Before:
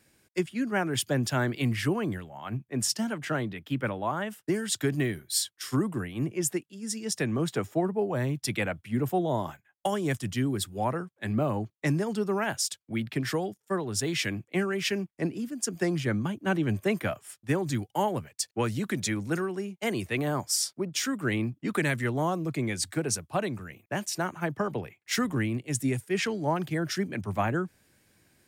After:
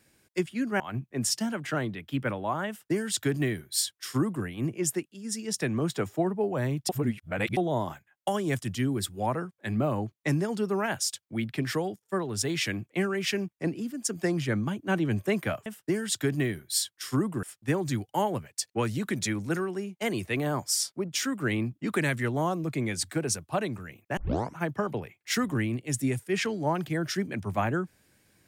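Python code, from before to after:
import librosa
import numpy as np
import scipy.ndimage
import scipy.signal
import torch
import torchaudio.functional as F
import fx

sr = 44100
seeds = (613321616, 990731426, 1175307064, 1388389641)

y = fx.edit(x, sr, fx.cut(start_s=0.8, length_s=1.58),
    fx.duplicate(start_s=4.26, length_s=1.77, to_s=17.24),
    fx.reverse_span(start_s=8.47, length_s=0.68),
    fx.tape_start(start_s=23.98, length_s=0.4), tone=tone)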